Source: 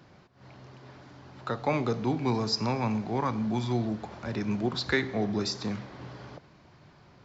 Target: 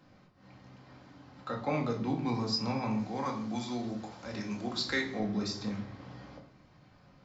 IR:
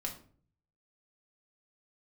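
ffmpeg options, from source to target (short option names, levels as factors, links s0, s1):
-filter_complex "[0:a]asettb=1/sr,asplit=3[s0][s1][s2];[s0]atrim=end=2.994[s3];[s1]atrim=start=2.99:end=5.2,asetpts=PTS-STARTPTS,afade=t=in:d=0.004:c=qsin,afade=t=out:st=2.206:d=0.004:c=qsin,bass=f=250:g=-6,treble=f=4000:g=9[s4];[s2]atrim=start=5.196[s5];[s3][s4]acrossfade=d=0.004:c1=hsin:c2=qsin[s6];[s6][s5]acrossfade=d=0.004:c1=qsin:c2=hsin[s7];[1:a]atrim=start_sample=2205[s8];[s7][s8]afir=irnorm=-1:irlink=0,volume=0.562"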